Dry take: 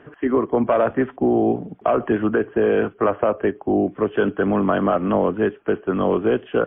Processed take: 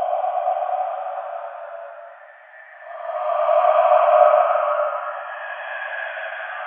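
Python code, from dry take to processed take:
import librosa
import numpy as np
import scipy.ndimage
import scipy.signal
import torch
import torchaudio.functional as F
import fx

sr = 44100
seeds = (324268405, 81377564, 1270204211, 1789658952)

p1 = fx.level_steps(x, sr, step_db=21)
p2 = x + F.gain(torch.from_numpy(p1), 2.0).numpy()
p3 = fx.cheby_harmonics(p2, sr, harmonics=(5,), levels_db=(-44,), full_scale_db=-0.5)
p4 = fx.brickwall_highpass(p3, sr, low_hz=570.0)
p5 = p4 + 10.0 ** (-15.5 / 20.0) * np.pad(p4, (int(753 * sr / 1000.0), 0))[:len(p4)]
p6 = fx.paulstretch(p5, sr, seeds[0], factor=8.6, window_s=0.25, from_s=1.43)
y = F.gain(torch.from_numpy(p6), -1.0).numpy()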